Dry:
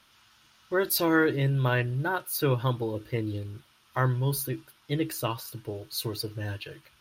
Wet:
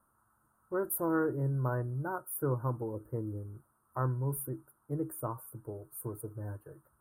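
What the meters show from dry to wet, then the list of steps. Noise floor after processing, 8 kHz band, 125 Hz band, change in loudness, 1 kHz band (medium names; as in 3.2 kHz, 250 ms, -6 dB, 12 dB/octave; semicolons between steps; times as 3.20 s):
-74 dBFS, -7.5 dB, -6.0 dB, -7.0 dB, -7.0 dB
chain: elliptic band-stop 1.3–9 kHz, stop band 40 dB; trim -6 dB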